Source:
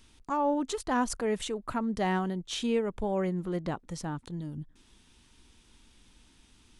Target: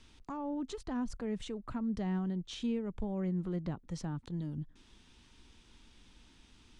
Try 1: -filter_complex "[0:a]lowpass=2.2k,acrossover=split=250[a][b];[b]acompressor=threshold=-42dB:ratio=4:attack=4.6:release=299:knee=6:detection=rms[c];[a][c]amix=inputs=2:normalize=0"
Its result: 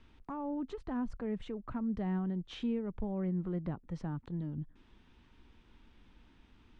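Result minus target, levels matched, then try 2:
8000 Hz band -14.5 dB
-filter_complex "[0:a]lowpass=6.4k,acrossover=split=250[a][b];[b]acompressor=threshold=-42dB:ratio=4:attack=4.6:release=299:knee=6:detection=rms[c];[a][c]amix=inputs=2:normalize=0"

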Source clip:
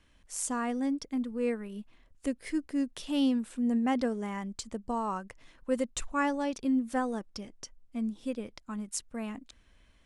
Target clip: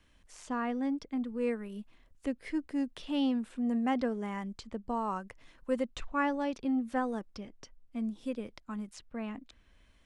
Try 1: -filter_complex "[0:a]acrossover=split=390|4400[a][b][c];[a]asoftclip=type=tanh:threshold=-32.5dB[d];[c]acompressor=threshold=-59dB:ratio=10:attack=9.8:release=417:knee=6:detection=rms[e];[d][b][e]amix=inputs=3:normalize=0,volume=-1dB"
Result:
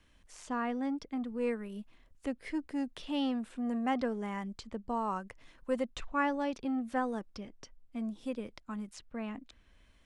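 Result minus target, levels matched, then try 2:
soft clip: distortion +8 dB
-filter_complex "[0:a]acrossover=split=390|4400[a][b][c];[a]asoftclip=type=tanh:threshold=-25.5dB[d];[c]acompressor=threshold=-59dB:ratio=10:attack=9.8:release=417:knee=6:detection=rms[e];[d][b][e]amix=inputs=3:normalize=0,volume=-1dB"

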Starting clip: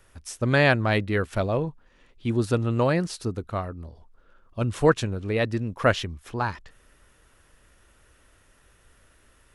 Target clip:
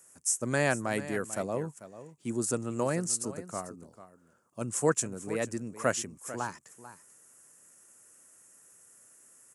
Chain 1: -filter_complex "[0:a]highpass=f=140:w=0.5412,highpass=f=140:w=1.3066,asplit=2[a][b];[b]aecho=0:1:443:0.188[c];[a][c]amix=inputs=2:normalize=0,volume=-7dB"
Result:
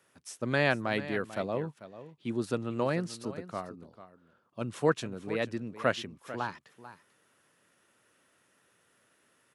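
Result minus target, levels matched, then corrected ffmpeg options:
8000 Hz band -16.5 dB
-filter_complex "[0:a]highpass=f=140:w=0.5412,highpass=f=140:w=1.3066,highshelf=f=5.3k:t=q:w=3:g=13,asplit=2[a][b];[b]aecho=0:1:443:0.188[c];[a][c]amix=inputs=2:normalize=0,volume=-7dB"

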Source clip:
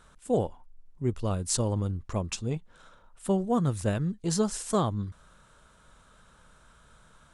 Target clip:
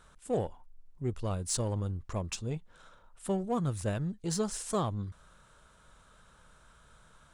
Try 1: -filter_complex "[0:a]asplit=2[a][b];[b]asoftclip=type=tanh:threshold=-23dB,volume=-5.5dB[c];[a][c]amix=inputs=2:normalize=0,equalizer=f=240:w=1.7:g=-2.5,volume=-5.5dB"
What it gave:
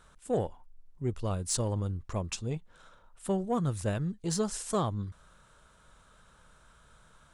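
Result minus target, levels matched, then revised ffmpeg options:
soft clip: distortion -8 dB
-filter_complex "[0:a]asplit=2[a][b];[b]asoftclip=type=tanh:threshold=-33dB,volume=-5.5dB[c];[a][c]amix=inputs=2:normalize=0,equalizer=f=240:w=1.7:g=-2.5,volume=-5.5dB"

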